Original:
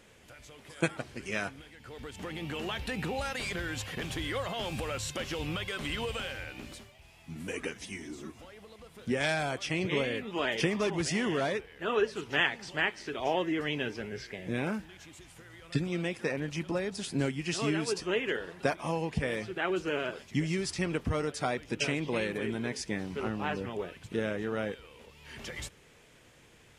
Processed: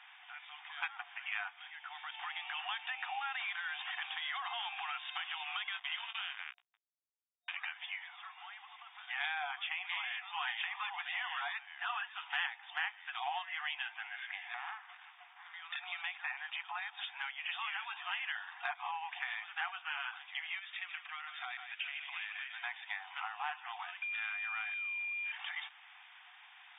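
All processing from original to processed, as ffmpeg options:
-filter_complex "[0:a]asettb=1/sr,asplit=3[a][b][c];[a]atrim=end=5.734[d];[b]atrim=start=5.73:end=7.56,asetpts=PTS-STARTPTS,afade=t=in:d=0.004:c=qsin,afade=t=out:st=1.826:d=0.004:c=qsin,bandpass=f=3.1k:t=q:w=0.59,acrusher=bits=5:mix=0:aa=0.5,asplit=2[e][f];[f]adelay=18,volume=-8dB[g];[e][g]amix=inputs=2:normalize=0,atrim=end_sample=80703[h];[c]atrim=start=7.556[i];[d][h]acrossfade=d=0.004:c1=hsin:c2=qsin[j];[j][i]acrossfade=d=0.004:c1=qsin:c2=hsin,asettb=1/sr,asplit=3[k][l][m];[k]atrim=end=14.544[n];[l]atrim=start=14.54:end=15.54,asetpts=PTS-STARTPTS,afade=t=in:d=0.004:c=qsin,afade=t=out:st=0.996:d=0.004:c=qsin,lowpass=2k,acompressor=threshold=-36dB:ratio=2:attack=3.2:release=140:knee=1:detection=peak,aeval=exprs='abs(val(0))':c=same[o];[m]atrim=start=15.536[p];[n][o]acrossfade=d=0.004:c1=hsin:c2=qsin[q];[q][p]acrossfade=d=0.004:c1=qsin:c2=hsin,asettb=1/sr,asplit=3[r][s][t];[r]atrim=end=20.594[u];[s]atrim=start=20.59:end=22.63,asetpts=PTS-STARTPTS,afade=t=in:d=0.004:c=qsin,afade=t=out:st=2.036:d=0.004:c=qsin,acompressor=threshold=-32dB:ratio=3:attack=3.2:release=140:knee=1:detection=peak,equalizer=f=850:t=o:w=1.1:g=-13,aecho=1:1:149:0.355,atrim=end_sample=89964[v];[t]atrim=start=22.626[w];[u][v]acrossfade=d=0.004:c1=hsin:c2=qsin[x];[x][w]acrossfade=d=0.004:c1=qsin:c2=hsin,asettb=1/sr,asplit=3[y][z][aa];[y]atrim=end=24.024[ab];[z]atrim=start=24.02:end=25.32,asetpts=PTS-STARTPTS,afade=t=in:d=0.004:c=qsin,afade=t=out:st=1.296:d=0.004:c=qsin,equalizer=f=840:t=o:w=0.47:g=-7.5,aeval=exprs='val(0)+0.0141*sin(2*PI*2400*n/s)':c=same[ac];[aa]atrim=start=25.316[ad];[ab][ac]acrossfade=d=0.004:c1=hsin:c2=qsin[ae];[ae][ad]acrossfade=d=0.004:c1=qsin:c2=hsin,afftfilt=real='re*between(b*sr/4096,700,3700)':imag='im*between(b*sr/4096,700,3700)':win_size=4096:overlap=0.75,acompressor=threshold=-45dB:ratio=2.5,volume=5.5dB"

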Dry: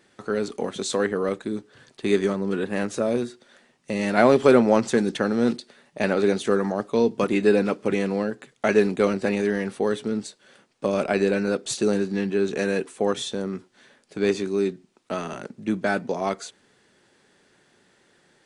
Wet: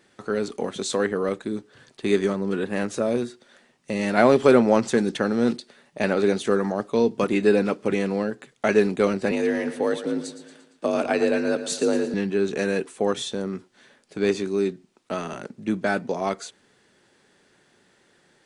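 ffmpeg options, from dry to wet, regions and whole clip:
-filter_complex "[0:a]asettb=1/sr,asplit=3[a][b][c];[a]atrim=end=9.314[d];[b]atrim=start=9.31:end=12.14,asetpts=PTS-STARTPTS,afade=t=in:d=0.004:c=qsin,afade=t=out:st=2.826:d=0.004:c=qsin,afreqshift=48,aecho=1:1:115|230|345|460|575:0.251|0.131|0.0679|0.0353|0.0184,atrim=end_sample=124803[e];[c]atrim=start=12.136[f];[d][e]acrossfade=d=0.004:c1=hsin:c2=qsin[g];[g][f]acrossfade=d=0.004:c1=qsin:c2=hsin"

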